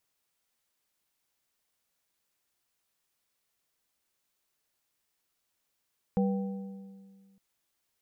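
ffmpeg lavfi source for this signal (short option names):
-f lavfi -i "aevalsrc='0.0708*pow(10,-3*t/1.91)*sin(2*PI*195*t)+0.0355*pow(10,-3*t/1.451)*sin(2*PI*487.5*t)+0.0178*pow(10,-3*t/1.26)*sin(2*PI*780*t)':d=1.21:s=44100"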